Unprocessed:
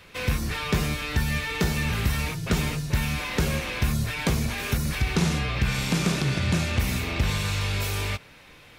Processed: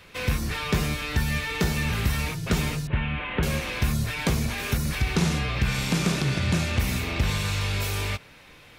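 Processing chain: 2.87–3.43 elliptic low-pass 3100 Hz, stop band 60 dB

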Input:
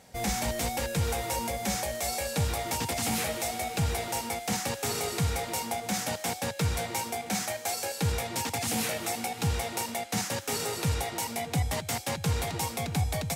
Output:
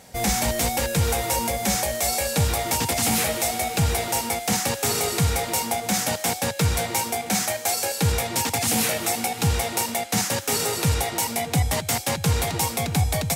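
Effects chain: high shelf 7500 Hz +4.5 dB; gain +6.5 dB

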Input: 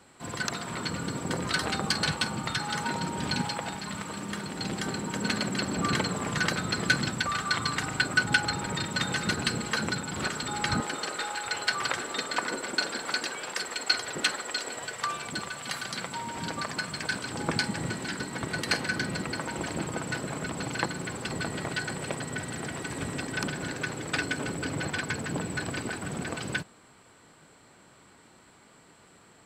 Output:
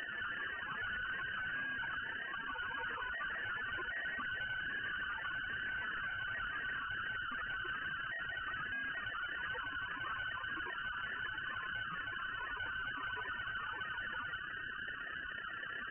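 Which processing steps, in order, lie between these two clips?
delta modulation 64 kbps, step -35.5 dBFS; added harmonics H 3 -27 dB, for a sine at -11.5 dBFS; dynamic EQ 1900 Hz, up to +6 dB, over -48 dBFS, Q 2.5; in parallel at -1.5 dB: compressor, threshold -38 dBFS, peak gain reduction 17.5 dB; on the sum: harmoniser +4 st -12 dB; sample-rate reducer 2300 Hz, jitter 0%; granular stretch 0.54×, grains 31 ms; inverse Chebyshev high-pass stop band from 650 Hz, stop band 40 dB; loudest bins only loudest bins 8; AM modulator 32 Hz, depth 35%; tube stage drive 54 dB, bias 0.6; inverted band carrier 3000 Hz; gain +16.5 dB

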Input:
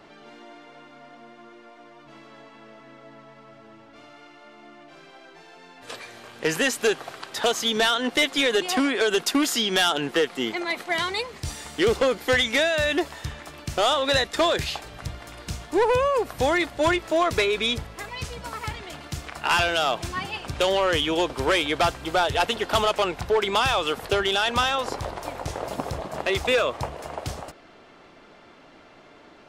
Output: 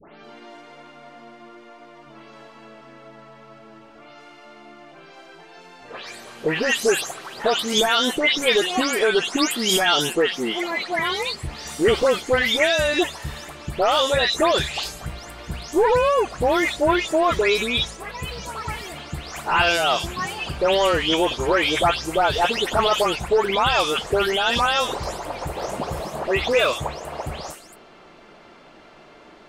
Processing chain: spectral delay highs late, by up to 0.245 s; gain +3.5 dB

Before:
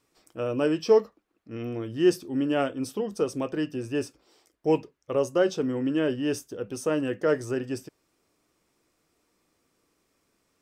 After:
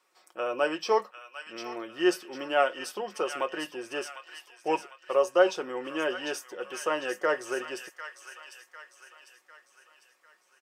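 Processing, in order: HPF 840 Hz 12 dB/oct; high shelf 2300 Hz -10.5 dB; comb 5.5 ms, depth 48%; on a send: thin delay 0.75 s, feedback 47%, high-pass 1500 Hz, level -7 dB; on the sum: gain +8 dB

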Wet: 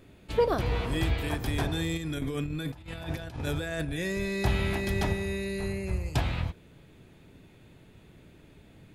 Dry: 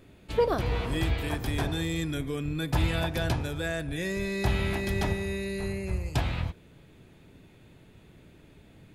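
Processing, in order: 1.97–3.85 negative-ratio compressor -33 dBFS, ratio -0.5

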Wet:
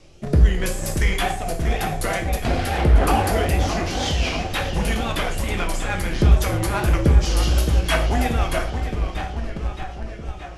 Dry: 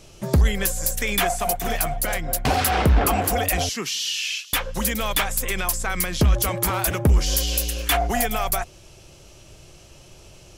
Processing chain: rotary speaker horn 0.85 Hz, later 6 Hz, at 3.36; on a send: darkening echo 0.626 s, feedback 73%, low-pass 4700 Hz, level -8 dB; on the sum: wow and flutter 130 cents; in parallel at -8.5 dB: Schmitt trigger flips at -24.5 dBFS; on the sum: steep low-pass 12000 Hz 48 dB/oct; high shelf 5900 Hz -9.5 dB; non-linear reverb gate 0.16 s falling, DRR 3 dB

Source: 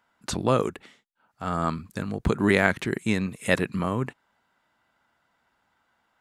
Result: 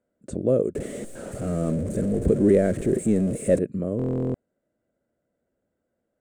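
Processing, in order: 0.75–3.59 zero-crossing step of -21.5 dBFS; EQ curve 140 Hz 0 dB, 580 Hz +6 dB, 890 Hz -23 dB, 1700 Hz -16 dB, 3200 Hz -22 dB, 5200 Hz -22 dB, 8500 Hz -4 dB, 13000 Hz -25 dB; stuck buffer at 3.97, samples 1024, times 15; gain -1.5 dB

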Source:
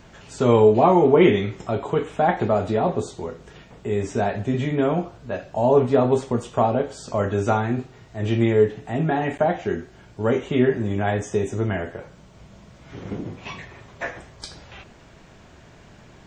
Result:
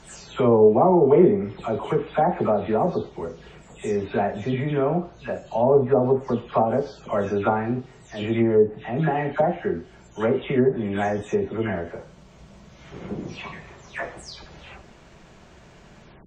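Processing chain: spectral delay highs early, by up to 0.243 s; treble ducked by the level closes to 900 Hz, closed at -14 dBFS

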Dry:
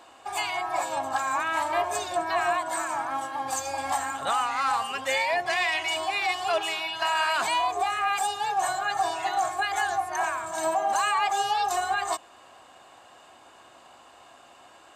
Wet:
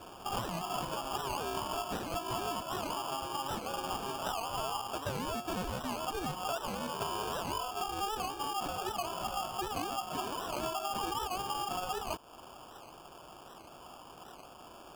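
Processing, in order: high shelf 3500 Hz +11.5 dB, from 2.63 s +3.5 dB; compressor 6:1, threshold -34 dBFS, peak gain reduction 13 dB; sample-and-hold 22×; record warp 78 rpm, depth 160 cents

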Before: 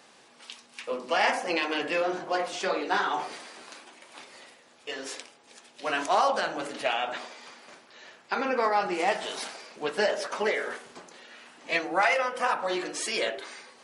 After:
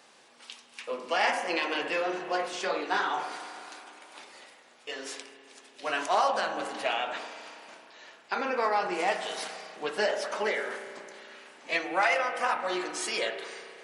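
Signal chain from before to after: low shelf 200 Hz -7.5 dB; spring tank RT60 2.8 s, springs 33 ms, chirp 60 ms, DRR 9 dB; gain -1.5 dB

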